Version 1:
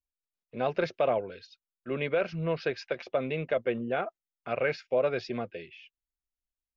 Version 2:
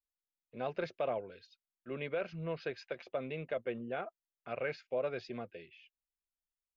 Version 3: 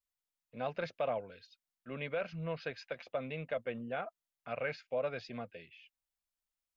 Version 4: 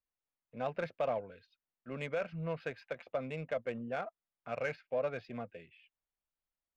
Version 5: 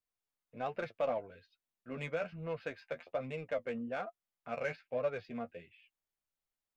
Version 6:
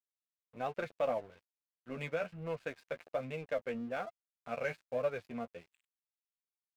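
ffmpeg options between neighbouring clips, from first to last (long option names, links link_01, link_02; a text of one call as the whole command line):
ffmpeg -i in.wav -af "bandreject=frequency=5500:width=14,volume=-8.5dB" out.wav
ffmpeg -i in.wav -af "equalizer=frequency=370:width=3.6:gain=-11,volume=1.5dB" out.wav
ffmpeg -i in.wav -af "adynamicsmooth=sensitivity=6:basefreq=2400,volume=1dB" out.wav
ffmpeg -i in.wav -af "flanger=delay=8.4:depth=4.5:regen=27:speed=1.2:shape=sinusoidal,volume=3dB" out.wav
ffmpeg -i in.wav -af "aeval=exprs='sgn(val(0))*max(abs(val(0))-0.00126,0)':channel_layout=same,volume=1dB" out.wav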